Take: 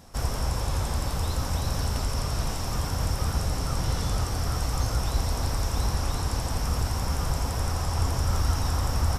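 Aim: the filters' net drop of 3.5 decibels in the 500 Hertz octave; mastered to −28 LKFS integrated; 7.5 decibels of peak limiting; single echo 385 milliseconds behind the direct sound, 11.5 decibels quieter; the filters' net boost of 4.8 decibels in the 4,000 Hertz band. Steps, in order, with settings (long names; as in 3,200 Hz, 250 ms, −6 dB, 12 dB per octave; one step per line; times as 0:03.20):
parametric band 500 Hz −4.5 dB
parametric band 4,000 Hz +7 dB
brickwall limiter −19.5 dBFS
single-tap delay 385 ms −11.5 dB
level +1.5 dB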